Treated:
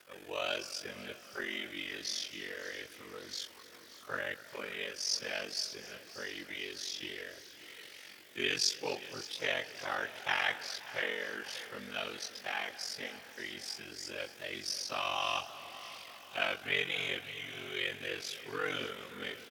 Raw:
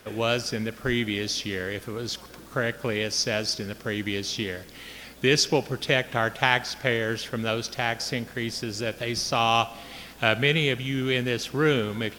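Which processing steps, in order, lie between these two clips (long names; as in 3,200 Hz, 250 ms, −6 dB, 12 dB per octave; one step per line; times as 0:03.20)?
high-pass filter 890 Hz 6 dB per octave
time stretch by phase vocoder 1.6×
ring modulation 23 Hz
on a send: repeating echo 579 ms, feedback 57%, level −16.5 dB
on the sum: feedback echo with a swinging delay time 257 ms, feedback 76%, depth 176 cents, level −20 dB
level −3 dB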